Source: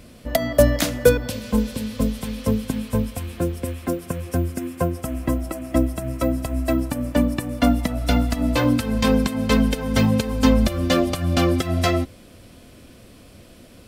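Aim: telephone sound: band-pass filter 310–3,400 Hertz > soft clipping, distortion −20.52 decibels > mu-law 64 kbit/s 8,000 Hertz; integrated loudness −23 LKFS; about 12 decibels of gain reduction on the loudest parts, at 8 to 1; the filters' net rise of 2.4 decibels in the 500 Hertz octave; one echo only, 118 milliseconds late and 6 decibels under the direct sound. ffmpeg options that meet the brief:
ffmpeg -i in.wav -af "equalizer=frequency=500:width_type=o:gain=3.5,acompressor=threshold=-19dB:ratio=8,highpass=310,lowpass=3400,aecho=1:1:118:0.501,asoftclip=threshold=-14.5dB,volume=6dB" -ar 8000 -c:a pcm_mulaw out.wav

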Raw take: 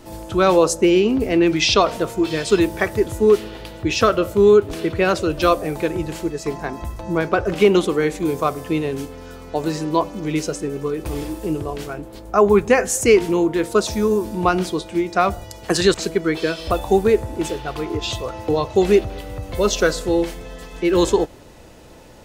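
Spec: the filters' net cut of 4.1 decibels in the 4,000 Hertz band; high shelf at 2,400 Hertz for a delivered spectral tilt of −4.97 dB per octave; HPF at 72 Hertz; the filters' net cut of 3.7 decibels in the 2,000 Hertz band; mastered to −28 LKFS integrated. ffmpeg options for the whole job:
ffmpeg -i in.wav -af "highpass=72,equalizer=frequency=2000:width_type=o:gain=-5,highshelf=frequency=2400:gain=3.5,equalizer=frequency=4000:width_type=o:gain=-7,volume=-8.5dB" out.wav

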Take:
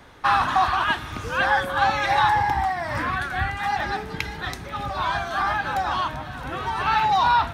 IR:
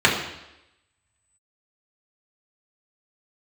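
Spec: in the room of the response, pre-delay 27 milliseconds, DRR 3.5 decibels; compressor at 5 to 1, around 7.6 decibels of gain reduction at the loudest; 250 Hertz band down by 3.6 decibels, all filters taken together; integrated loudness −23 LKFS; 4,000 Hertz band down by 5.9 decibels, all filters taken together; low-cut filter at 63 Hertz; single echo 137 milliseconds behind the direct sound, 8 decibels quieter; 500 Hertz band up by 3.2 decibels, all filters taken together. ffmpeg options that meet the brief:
-filter_complex "[0:a]highpass=63,equalizer=frequency=250:width_type=o:gain=-7,equalizer=frequency=500:width_type=o:gain=5.5,equalizer=frequency=4000:width_type=o:gain=-7.5,acompressor=threshold=-23dB:ratio=5,aecho=1:1:137:0.398,asplit=2[link_01][link_02];[1:a]atrim=start_sample=2205,adelay=27[link_03];[link_02][link_03]afir=irnorm=-1:irlink=0,volume=-25.5dB[link_04];[link_01][link_04]amix=inputs=2:normalize=0,volume=2.5dB"

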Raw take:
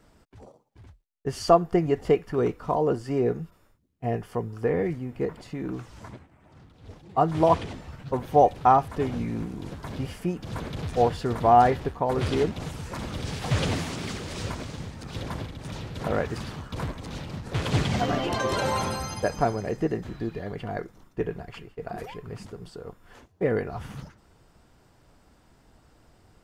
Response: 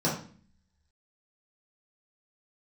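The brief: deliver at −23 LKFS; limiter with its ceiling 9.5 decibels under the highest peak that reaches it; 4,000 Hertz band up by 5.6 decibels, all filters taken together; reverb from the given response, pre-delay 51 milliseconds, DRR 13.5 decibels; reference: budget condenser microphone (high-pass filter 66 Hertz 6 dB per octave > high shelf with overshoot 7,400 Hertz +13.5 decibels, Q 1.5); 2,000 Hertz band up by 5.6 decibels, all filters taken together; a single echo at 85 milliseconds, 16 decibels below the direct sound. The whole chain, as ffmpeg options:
-filter_complex "[0:a]equalizer=frequency=2000:width_type=o:gain=6,equalizer=frequency=4000:width_type=o:gain=8,alimiter=limit=-13.5dB:level=0:latency=1,aecho=1:1:85:0.158,asplit=2[link_01][link_02];[1:a]atrim=start_sample=2205,adelay=51[link_03];[link_02][link_03]afir=irnorm=-1:irlink=0,volume=-24.5dB[link_04];[link_01][link_04]amix=inputs=2:normalize=0,highpass=frequency=66:poles=1,highshelf=frequency=7400:width_type=q:width=1.5:gain=13.5,volume=5dB"

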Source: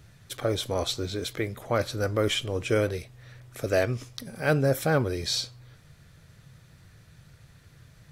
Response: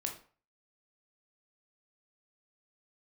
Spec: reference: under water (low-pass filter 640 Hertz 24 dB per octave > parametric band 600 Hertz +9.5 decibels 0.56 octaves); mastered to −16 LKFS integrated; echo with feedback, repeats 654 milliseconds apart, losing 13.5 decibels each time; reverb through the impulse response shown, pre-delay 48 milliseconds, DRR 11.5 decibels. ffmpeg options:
-filter_complex "[0:a]aecho=1:1:654|1308:0.211|0.0444,asplit=2[link_01][link_02];[1:a]atrim=start_sample=2205,adelay=48[link_03];[link_02][link_03]afir=irnorm=-1:irlink=0,volume=-12dB[link_04];[link_01][link_04]amix=inputs=2:normalize=0,lowpass=frequency=640:width=0.5412,lowpass=frequency=640:width=1.3066,equalizer=frequency=600:width_type=o:width=0.56:gain=9.5,volume=9.5dB"

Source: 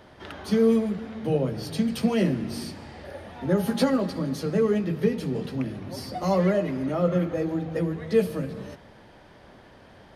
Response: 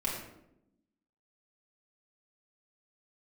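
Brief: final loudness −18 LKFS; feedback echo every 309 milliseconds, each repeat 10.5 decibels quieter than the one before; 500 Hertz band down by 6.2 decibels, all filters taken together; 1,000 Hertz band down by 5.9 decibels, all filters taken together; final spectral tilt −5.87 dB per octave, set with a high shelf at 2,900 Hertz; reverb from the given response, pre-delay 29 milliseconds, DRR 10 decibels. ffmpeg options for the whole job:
-filter_complex "[0:a]equalizer=frequency=500:width_type=o:gain=-6,equalizer=frequency=1000:width_type=o:gain=-7,highshelf=frequency=2900:gain=8.5,aecho=1:1:309|618|927:0.299|0.0896|0.0269,asplit=2[link_01][link_02];[1:a]atrim=start_sample=2205,adelay=29[link_03];[link_02][link_03]afir=irnorm=-1:irlink=0,volume=-15.5dB[link_04];[link_01][link_04]amix=inputs=2:normalize=0,volume=9dB"

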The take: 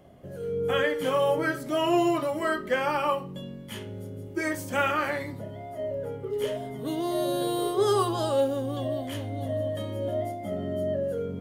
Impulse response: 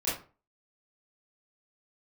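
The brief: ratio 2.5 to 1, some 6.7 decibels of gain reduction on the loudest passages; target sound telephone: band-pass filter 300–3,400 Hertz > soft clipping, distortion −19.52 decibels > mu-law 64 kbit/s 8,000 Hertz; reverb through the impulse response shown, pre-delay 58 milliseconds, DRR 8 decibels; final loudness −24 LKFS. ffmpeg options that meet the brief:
-filter_complex "[0:a]acompressor=threshold=-30dB:ratio=2.5,asplit=2[link_01][link_02];[1:a]atrim=start_sample=2205,adelay=58[link_03];[link_02][link_03]afir=irnorm=-1:irlink=0,volume=-15.5dB[link_04];[link_01][link_04]amix=inputs=2:normalize=0,highpass=300,lowpass=3400,asoftclip=threshold=-24.5dB,volume=10.5dB" -ar 8000 -c:a pcm_mulaw

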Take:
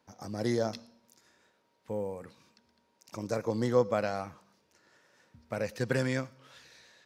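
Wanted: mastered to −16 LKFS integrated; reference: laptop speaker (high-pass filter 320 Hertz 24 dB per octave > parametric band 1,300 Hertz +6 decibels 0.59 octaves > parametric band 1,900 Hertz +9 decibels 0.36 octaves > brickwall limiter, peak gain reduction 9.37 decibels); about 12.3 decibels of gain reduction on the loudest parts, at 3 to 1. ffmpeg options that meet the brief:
ffmpeg -i in.wav -af "acompressor=threshold=-36dB:ratio=3,highpass=frequency=320:width=0.5412,highpass=frequency=320:width=1.3066,equalizer=frequency=1300:width_type=o:width=0.59:gain=6,equalizer=frequency=1900:width_type=o:width=0.36:gain=9,volume=28.5dB,alimiter=limit=-3.5dB:level=0:latency=1" out.wav

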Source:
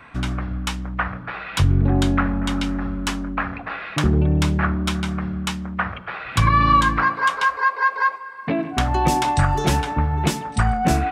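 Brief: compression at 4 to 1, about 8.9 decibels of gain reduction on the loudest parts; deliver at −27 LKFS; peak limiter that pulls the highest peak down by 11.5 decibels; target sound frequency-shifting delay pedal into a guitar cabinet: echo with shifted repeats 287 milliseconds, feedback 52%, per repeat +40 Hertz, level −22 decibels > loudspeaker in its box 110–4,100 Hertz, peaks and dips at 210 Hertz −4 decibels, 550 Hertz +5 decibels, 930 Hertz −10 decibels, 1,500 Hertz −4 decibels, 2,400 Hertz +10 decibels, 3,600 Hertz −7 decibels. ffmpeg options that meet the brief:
ffmpeg -i in.wav -filter_complex "[0:a]acompressor=threshold=-23dB:ratio=4,alimiter=limit=-23dB:level=0:latency=1,asplit=5[link_01][link_02][link_03][link_04][link_05];[link_02]adelay=287,afreqshift=40,volume=-22dB[link_06];[link_03]adelay=574,afreqshift=80,volume=-27.7dB[link_07];[link_04]adelay=861,afreqshift=120,volume=-33.4dB[link_08];[link_05]adelay=1148,afreqshift=160,volume=-39dB[link_09];[link_01][link_06][link_07][link_08][link_09]amix=inputs=5:normalize=0,highpass=110,equalizer=frequency=210:width_type=q:width=4:gain=-4,equalizer=frequency=550:width_type=q:width=4:gain=5,equalizer=frequency=930:width_type=q:width=4:gain=-10,equalizer=frequency=1500:width_type=q:width=4:gain=-4,equalizer=frequency=2400:width_type=q:width=4:gain=10,equalizer=frequency=3600:width_type=q:width=4:gain=-7,lowpass=frequency=4100:width=0.5412,lowpass=frequency=4100:width=1.3066,volume=6.5dB" out.wav

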